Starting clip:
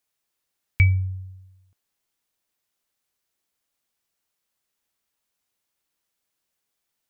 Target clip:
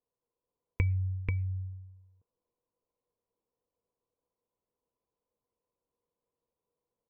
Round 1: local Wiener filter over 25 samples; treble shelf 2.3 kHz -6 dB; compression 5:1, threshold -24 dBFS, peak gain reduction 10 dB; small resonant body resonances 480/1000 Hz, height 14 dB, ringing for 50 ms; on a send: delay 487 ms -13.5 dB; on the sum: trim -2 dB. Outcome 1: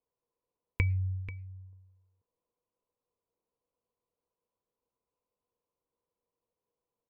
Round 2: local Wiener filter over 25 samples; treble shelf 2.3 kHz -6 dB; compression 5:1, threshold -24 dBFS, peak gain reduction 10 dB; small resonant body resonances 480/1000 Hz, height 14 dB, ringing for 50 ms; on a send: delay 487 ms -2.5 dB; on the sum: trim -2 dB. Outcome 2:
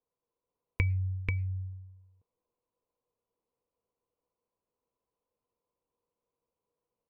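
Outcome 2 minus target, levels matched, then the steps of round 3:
4 kHz band +8.0 dB
local Wiener filter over 25 samples; treble shelf 2.3 kHz -17.5 dB; compression 5:1, threshold -24 dBFS, peak gain reduction 10 dB; small resonant body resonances 480/1000 Hz, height 14 dB, ringing for 50 ms; on a send: delay 487 ms -2.5 dB; on the sum: trim -2 dB

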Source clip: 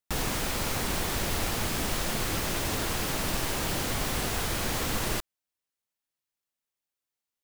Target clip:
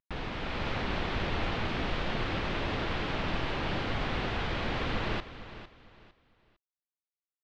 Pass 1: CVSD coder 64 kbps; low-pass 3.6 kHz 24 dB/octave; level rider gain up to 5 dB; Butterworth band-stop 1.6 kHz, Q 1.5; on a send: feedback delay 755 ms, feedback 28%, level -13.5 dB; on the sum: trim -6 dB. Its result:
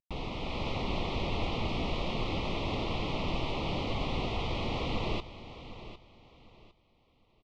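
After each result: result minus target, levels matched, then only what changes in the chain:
echo 301 ms late; 2 kHz band -4.5 dB
change: feedback delay 454 ms, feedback 28%, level -13.5 dB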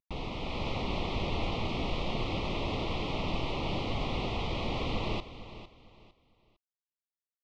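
2 kHz band -4.5 dB
remove: Butterworth band-stop 1.6 kHz, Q 1.5

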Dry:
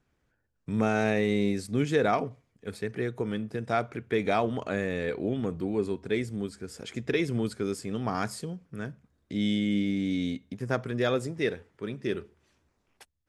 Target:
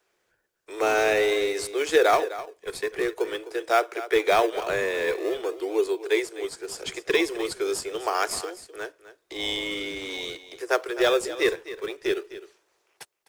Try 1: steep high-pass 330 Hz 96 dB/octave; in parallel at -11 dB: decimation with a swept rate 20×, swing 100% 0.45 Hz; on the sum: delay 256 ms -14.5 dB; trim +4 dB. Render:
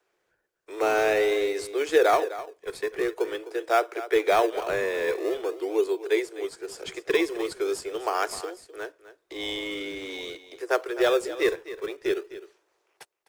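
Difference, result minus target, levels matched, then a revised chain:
4 kHz band -3.5 dB
steep high-pass 330 Hz 96 dB/octave; treble shelf 2.3 kHz +6.5 dB; in parallel at -11 dB: decimation with a swept rate 20×, swing 100% 0.45 Hz; on the sum: delay 256 ms -14.5 dB; trim +4 dB

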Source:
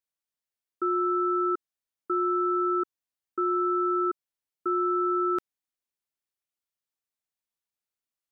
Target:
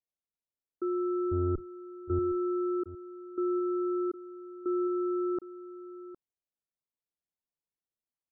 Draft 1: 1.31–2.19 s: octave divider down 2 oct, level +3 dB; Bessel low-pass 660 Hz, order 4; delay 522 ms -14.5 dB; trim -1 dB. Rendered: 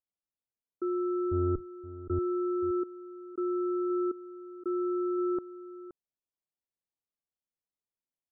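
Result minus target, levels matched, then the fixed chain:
echo 238 ms early
1.31–2.19 s: octave divider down 2 oct, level +3 dB; Bessel low-pass 660 Hz, order 4; delay 760 ms -14.5 dB; trim -1 dB

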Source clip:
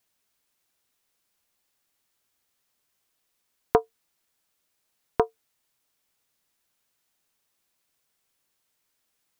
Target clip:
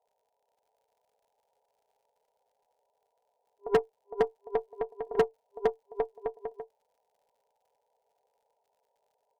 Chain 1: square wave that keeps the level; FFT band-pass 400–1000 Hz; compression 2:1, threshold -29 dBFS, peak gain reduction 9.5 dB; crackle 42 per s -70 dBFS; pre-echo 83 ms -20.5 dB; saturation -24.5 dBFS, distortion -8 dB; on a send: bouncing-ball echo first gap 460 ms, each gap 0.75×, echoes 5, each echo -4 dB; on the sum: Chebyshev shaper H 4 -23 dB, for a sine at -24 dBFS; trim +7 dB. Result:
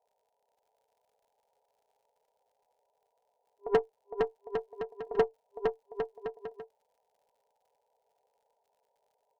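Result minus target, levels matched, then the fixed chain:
saturation: distortion +9 dB
square wave that keeps the level; FFT band-pass 400–1000 Hz; compression 2:1, threshold -29 dBFS, peak gain reduction 9.5 dB; crackle 42 per s -70 dBFS; pre-echo 83 ms -20.5 dB; saturation -16 dBFS, distortion -17 dB; on a send: bouncing-ball echo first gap 460 ms, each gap 0.75×, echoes 5, each echo -4 dB; on the sum: Chebyshev shaper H 4 -23 dB, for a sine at -24 dBFS; trim +7 dB

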